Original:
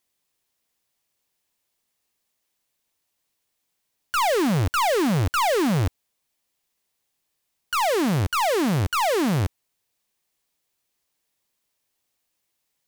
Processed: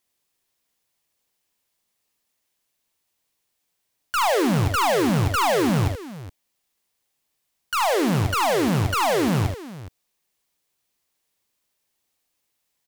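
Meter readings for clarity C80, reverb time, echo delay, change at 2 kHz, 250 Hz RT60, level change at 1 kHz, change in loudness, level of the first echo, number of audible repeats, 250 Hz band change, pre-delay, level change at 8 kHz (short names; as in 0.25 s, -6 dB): none, none, 43 ms, +1.0 dB, none, +1.0 dB, +1.0 dB, -11.0 dB, 3, +1.0 dB, none, +1.0 dB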